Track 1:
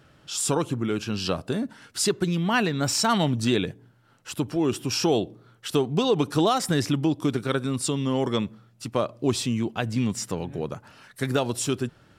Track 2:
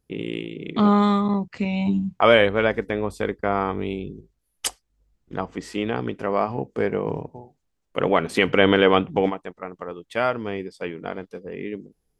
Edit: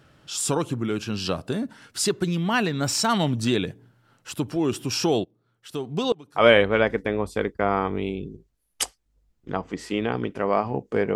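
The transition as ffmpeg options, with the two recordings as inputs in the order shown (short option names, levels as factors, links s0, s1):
-filter_complex "[0:a]asplit=3[s0][s1][s2];[s0]afade=t=out:st=5.23:d=0.02[s3];[s1]aeval=exprs='val(0)*pow(10,-24*if(lt(mod(-0.98*n/s,1),2*abs(-0.98)/1000),1-mod(-0.98*n/s,1)/(2*abs(-0.98)/1000),(mod(-0.98*n/s,1)-2*abs(-0.98)/1000)/(1-2*abs(-0.98)/1000))/20)':c=same,afade=t=in:st=5.23:d=0.02,afade=t=out:st=6.47:d=0.02[s4];[s2]afade=t=in:st=6.47:d=0.02[s5];[s3][s4][s5]amix=inputs=3:normalize=0,apad=whole_dur=11.15,atrim=end=11.15,atrim=end=6.47,asetpts=PTS-STARTPTS[s6];[1:a]atrim=start=2.13:end=6.99,asetpts=PTS-STARTPTS[s7];[s6][s7]acrossfade=d=0.18:c1=tri:c2=tri"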